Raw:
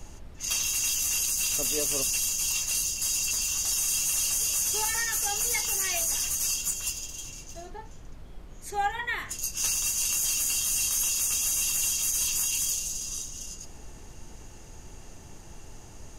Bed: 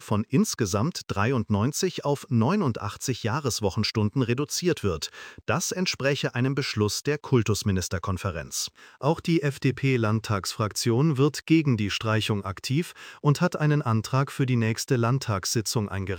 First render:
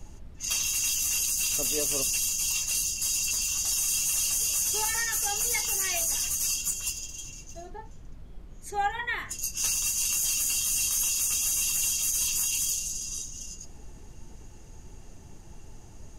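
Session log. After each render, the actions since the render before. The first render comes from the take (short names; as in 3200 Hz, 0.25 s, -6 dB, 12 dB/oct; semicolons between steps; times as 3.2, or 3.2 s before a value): denoiser 6 dB, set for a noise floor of -46 dBFS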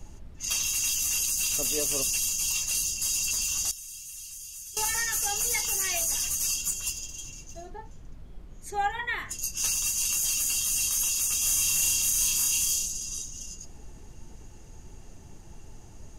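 3.71–4.77 passive tone stack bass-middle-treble 6-0-2; 11.38–12.86 flutter echo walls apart 5.4 m, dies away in 0.47 s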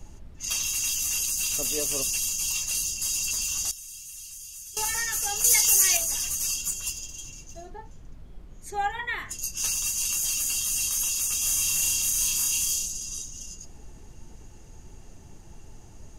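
5.44–5.97 high shelf 3300 Hz +10.5 dB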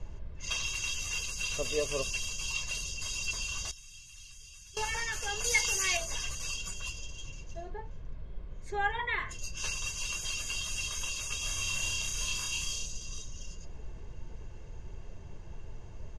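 LPF 3500 Hz 12 dB/oct; comb 1.9 ms, depth 49%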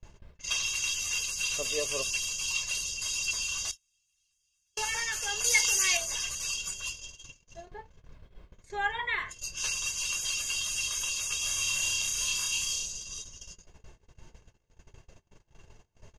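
gate -39 dBFS, range -28 dB; tilt +2 dB/oct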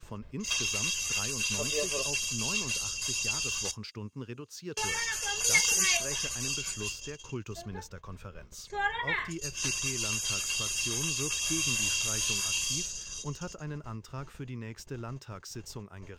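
add bed -16.5 dB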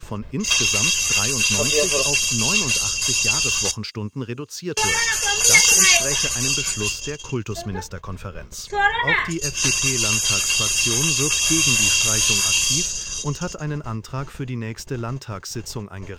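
gain +12 dB; limiter -2 dBFS, peak gain reduction 2 dB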